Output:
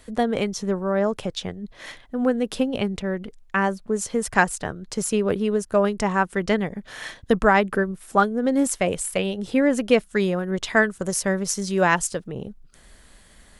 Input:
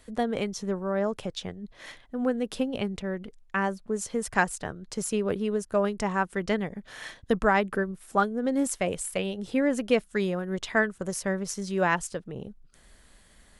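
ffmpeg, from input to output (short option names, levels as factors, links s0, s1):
-filter_complex "[0:a]asettb=1/sr,asplit=3[s0][s1][s2];[s0]atrim=end=10.514[s3];[s1]atrim=start=10.51:end=12.29,asetpts=PTS-STARTPTS,afade=t=in:d=0.004:c=qsin,afade=t=out:st=1.776:d=0.004:c=qsin,adynamicequalizer=threshold=0.01:dfrequency=3900:dqfactor=0.7:tfrequency=3900:tqfactor=0.7:attack=5:release=100:ratio=0.375:range=2.5:mode=boostabove:tftype=highshelf[s4];[s2]atrim=start=12.286[s5];[s3][s4]acrossfade=d=0.004:c1=hsin:c2=qsin[s6];[s6][s5]acrossfade=d=0.004:c1=qsin:c2=hsin,volume=1.88"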